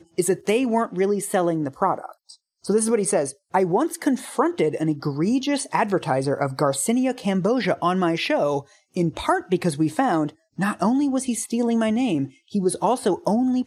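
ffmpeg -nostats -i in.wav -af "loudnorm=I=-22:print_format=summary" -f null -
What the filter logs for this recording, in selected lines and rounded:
Input Integrated:    -22.6 LUFS
Input True Peak:      -5.4 dBTP
Input LRA:             0.8 LU
Input Threshold:     -32.8 LUFS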